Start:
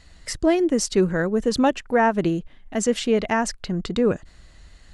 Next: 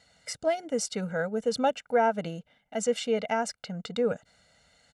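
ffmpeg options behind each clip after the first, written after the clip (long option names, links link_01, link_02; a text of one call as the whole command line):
ffmpeg -i in.wav -af "highpass=200,equalizer=frequency=460:width_type=o:width=0.3:gain=7,aecho=1:1:1.4:0.93,volume=-9dB" out.wav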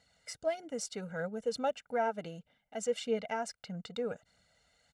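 ffmpeg -i in.wav -af "aphaser=in_gain=1:out_gain=1:delay=3.1:decay=0.34:speed=1.6:type=triangular,volume=-8dB" out.wav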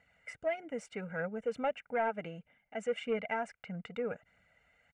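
ffmpeg -i in.wav -af "aresample=22050,aresample=44100,asoftclip=type=tanh:threshold=-23.5dB,highshelf=frequency=3200:width_type=q:width=3:gain=-11" out.wav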